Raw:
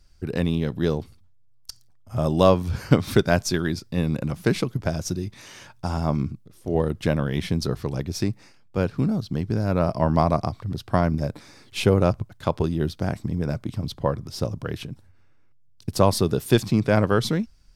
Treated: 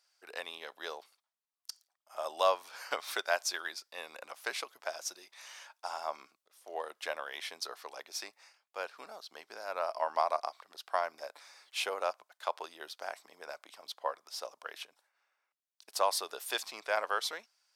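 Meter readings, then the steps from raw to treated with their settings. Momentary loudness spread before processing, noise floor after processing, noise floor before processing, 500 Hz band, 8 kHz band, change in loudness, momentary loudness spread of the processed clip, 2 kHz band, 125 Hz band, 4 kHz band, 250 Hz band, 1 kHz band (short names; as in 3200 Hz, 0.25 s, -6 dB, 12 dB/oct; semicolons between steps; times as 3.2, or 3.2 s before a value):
13 LU, under -85 dBFS, -53 dBFS, -13.5 dB, -5.5 dB, -13.0 dB, 16 LU, -5.5 dB, under -40 dB, -5.5 dB, -35.5 dB, -6.0 dB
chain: HPF 670 Hz 24 dB/oct; gain -5.5 dB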